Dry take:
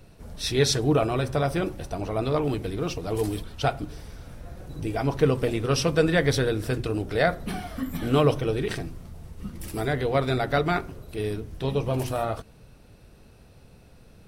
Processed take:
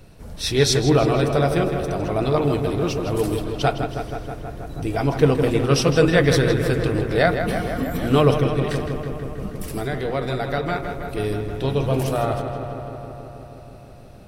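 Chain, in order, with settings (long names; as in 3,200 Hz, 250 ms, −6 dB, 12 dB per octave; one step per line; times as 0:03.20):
0:08.46–0:10.83: downward compressor 2 to 1, threshold −30 dBFS, peak gain reduction 7 dB
feedback echo with a low-pass in the loop 160 ms, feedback 79%, low-pass 4,000 Hz, level −7.5 dB
level +4 dB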